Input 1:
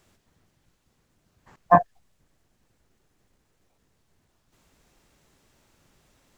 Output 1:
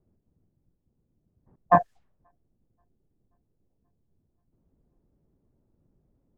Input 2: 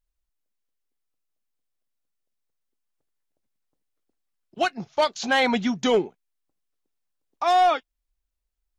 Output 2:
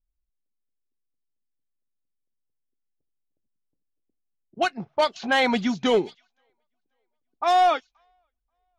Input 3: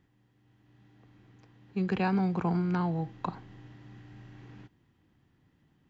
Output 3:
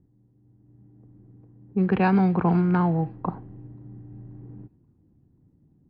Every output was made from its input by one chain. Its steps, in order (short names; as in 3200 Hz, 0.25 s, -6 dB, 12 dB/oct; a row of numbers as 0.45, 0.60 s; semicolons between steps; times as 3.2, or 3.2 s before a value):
thin delay 0.532 s, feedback 61%, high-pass 4100 Hz, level -11.5 dB; low-pass opened by the level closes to 360 Hz, open at -18.5 dBFS; match loudness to -23 LUFS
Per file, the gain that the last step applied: -2.5, 0.0, +8.0 dB